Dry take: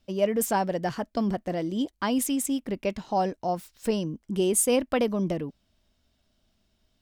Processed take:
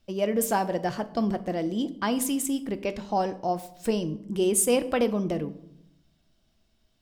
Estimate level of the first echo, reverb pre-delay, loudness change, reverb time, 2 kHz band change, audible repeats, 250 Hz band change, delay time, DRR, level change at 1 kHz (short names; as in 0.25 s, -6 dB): none, 3 ms, 0.0 dB, 0.80 s, +0.5 dB, none, 0.0 dB, none, 10.0 dB, 0.0 dB